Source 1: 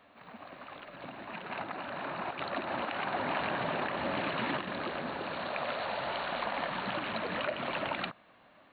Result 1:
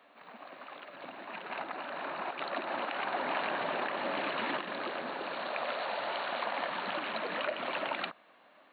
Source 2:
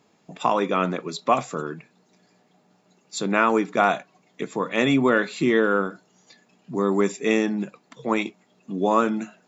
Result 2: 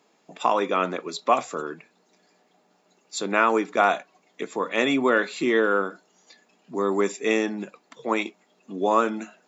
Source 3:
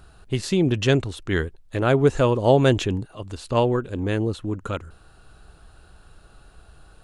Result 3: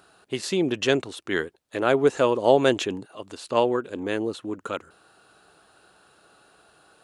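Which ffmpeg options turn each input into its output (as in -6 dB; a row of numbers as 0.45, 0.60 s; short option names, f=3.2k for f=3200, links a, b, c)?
-af "highpass=290"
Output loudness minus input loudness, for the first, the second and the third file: -0.5, -1.0, -2.0 LU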